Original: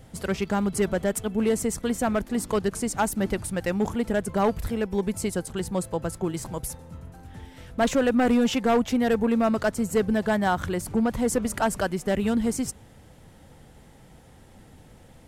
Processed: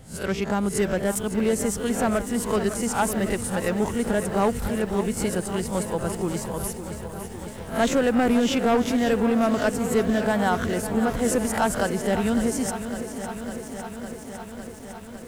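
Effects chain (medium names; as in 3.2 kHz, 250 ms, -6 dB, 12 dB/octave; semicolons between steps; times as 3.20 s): reverse spectral sustain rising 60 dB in 0.31 s; bit-crushed delay 555 ms, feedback 80%, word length 8-bit, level -11 dB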